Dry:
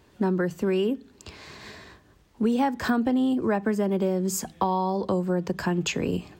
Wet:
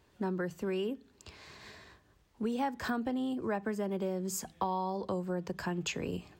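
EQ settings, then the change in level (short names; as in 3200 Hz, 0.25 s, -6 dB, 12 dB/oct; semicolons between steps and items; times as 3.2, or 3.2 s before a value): bell 250 Hz -3.5 dB 1.5 oct; -7.5 dB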